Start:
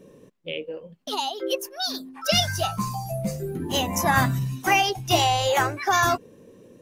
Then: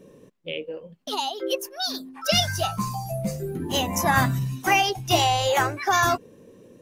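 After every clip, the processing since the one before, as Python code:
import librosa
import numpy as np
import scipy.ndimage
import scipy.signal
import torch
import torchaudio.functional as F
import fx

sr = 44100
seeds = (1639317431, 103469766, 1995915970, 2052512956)

y = x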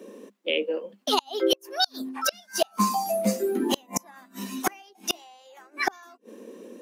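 y = scipy.signal.sosfilt(scipy.signal.cheby1(8, 1.0, 200.0, 'highpass', fs=sr, output='sos'), x)
y = fx.gate_flip(y, sr, shuts_db=-16.0, range_db=-35)
y = y * librosa.db_to_amplitude(7.0)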